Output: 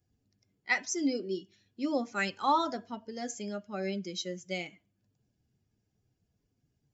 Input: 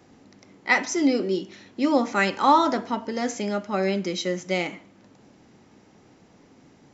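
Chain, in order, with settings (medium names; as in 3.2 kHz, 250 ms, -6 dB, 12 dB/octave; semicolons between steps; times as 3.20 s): expander on every frequency bin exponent 1.5; treble shelf 5 kHz +9 dB; trim -8 dB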